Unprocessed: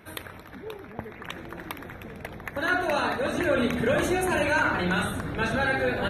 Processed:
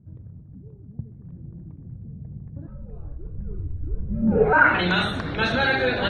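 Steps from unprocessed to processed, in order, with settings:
low-pass filter sweep 140 Hz → 4,100 Hz, 0:04.04–0:04.85
0:02.67–0:04.53: frequency shifter −150 Hz
level +3 dB

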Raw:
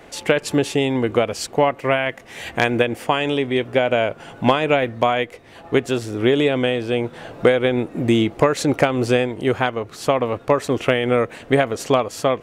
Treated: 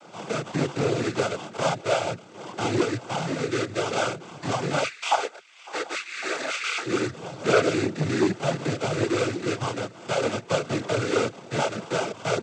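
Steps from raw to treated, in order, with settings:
variable-slope delta modulation 64 kbit/s
low-pass filter 5,100 Hz 24 dB per octave
flat-topped bell 2,100 Hz −9.5 dB
comb filter 5.7 ms, depth 93%
dynamic equaliser 860 Hz, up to −5 dB, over −29 dBFS, Q 1.2
brickwall limiter −12 dBFS, peak gain reduction 9 dB
decimation without filtering 23×
multi-voice chorus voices 4, 1.5 Hz, delay 27 ms, depth 3 ms
0:04.83–0:06.85: auto-filter high-pass square 1.8 Hz 740–2,100 Hz
cochlear-implant simulation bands 16
saturating transformer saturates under 750 Hz

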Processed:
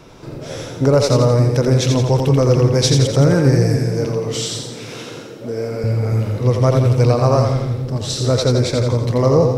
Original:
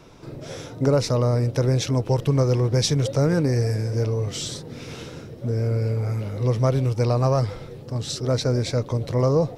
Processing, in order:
0:03.77–0:05.84: high-pass filter 260 Hz 12 dB per octave
echo with a time of its own for lows and highs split 350 Hz, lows 286 ms, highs 85 ms, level −4.5 dB
level +5.5 dB

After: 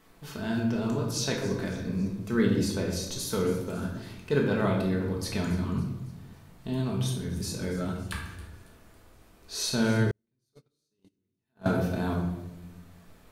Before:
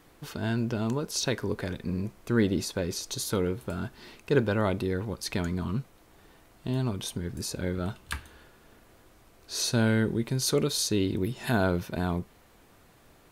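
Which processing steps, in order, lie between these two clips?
delay with a high-pass on its return 277 ms, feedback 52%, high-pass 5,300 Hz, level −14 dB
rectangular room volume 400 cubic metres, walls mixed, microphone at 1.5 metres
0:10.11–0:11.66: noise gate −15 dBFS, range −52 dB
level −4 dB

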